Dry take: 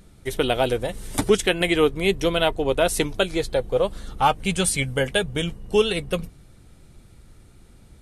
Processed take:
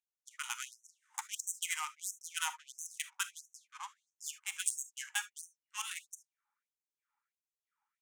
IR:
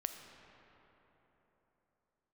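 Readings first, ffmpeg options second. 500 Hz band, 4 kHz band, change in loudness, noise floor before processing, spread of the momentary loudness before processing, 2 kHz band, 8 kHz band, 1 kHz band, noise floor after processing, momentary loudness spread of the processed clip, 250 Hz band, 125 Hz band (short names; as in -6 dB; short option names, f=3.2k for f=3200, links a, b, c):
under -40 dB, -16.5 dB, -17.0 dB, -51 dBFS, 8 LU, -15.0 dB, -7.0 dB, -19.5 dB, under -85 dBFS, 14 LU, under -40 dB, under -40 dB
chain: -filter_complex "[0:a]adynamicsmooth=sensitivity=2.5:basefreq=860,highshelf=f=5.4k:t=q:w=3:g=7.5[a];[1:a]atrim=start_sample=2205,atrim=end_sample=3528[b];[a][b]afir=irnorm=-1:irlink=0,afftfilt=real='re*gte(b*sr/1024,770*pow(5800/770,0.5+0.5*sin(2*PI*1.5*pts/sr)))':imag='im*gte(b*sr/1024,770*pow(5800/770,0.5+0.5*sin(2*PI*1.5*pts/sr)))':win_size=1024:overlap=0.75,volume=-8.5dB"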